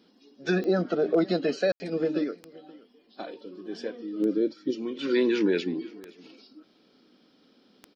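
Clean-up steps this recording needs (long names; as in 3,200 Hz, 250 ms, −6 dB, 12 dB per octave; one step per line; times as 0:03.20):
clipped peaks rebuilt −14.5 dBFS
click removal
ambience match 0:01.72–0:01.80
echo removal 523 ms −22 dB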